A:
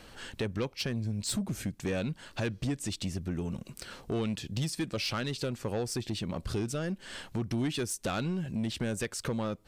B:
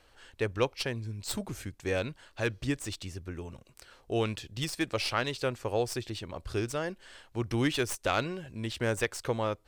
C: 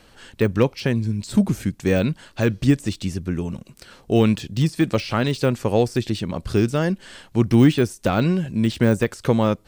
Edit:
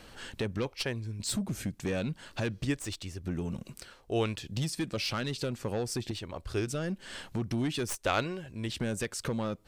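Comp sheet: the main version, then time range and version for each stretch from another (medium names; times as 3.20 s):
A
0.66–1.20 s: from B
2.65–3.24 s: from B
3.83–4.47 s: from B, crossfade 0.24 s
6.11–6.67 s: from B
7.88–8.69 s: from B
not used: C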